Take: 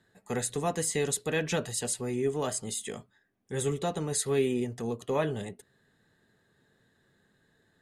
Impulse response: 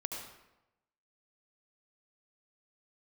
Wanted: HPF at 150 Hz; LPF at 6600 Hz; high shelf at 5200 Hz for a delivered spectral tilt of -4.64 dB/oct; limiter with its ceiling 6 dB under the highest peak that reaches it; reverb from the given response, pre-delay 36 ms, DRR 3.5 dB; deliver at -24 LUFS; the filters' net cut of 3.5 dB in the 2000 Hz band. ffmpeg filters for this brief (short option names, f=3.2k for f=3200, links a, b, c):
-filter_complex "[0:a]highpass=150,lowpass=6.6k,equalizer=f=2k:t=o:g=-4,highshelf=f=5.2k:g=-3,alimiter=limit=-22.5dB:level=0:latency=1,asplit=2[a][b];[1:a]atrim=start_sample=2205,adelay=36[c];[b][c]afir=irnorm=-1:irlink=0,volume=-4.5dB[d];[a][d]amix=inputs=2:normalize=0,volume=8.5dB"